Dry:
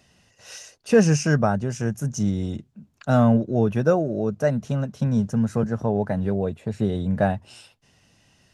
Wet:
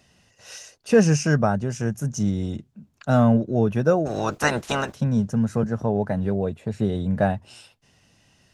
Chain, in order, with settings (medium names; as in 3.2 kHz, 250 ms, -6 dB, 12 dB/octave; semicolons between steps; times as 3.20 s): 4.05–4.94 s: spectral peaks clipped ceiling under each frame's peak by 29 dB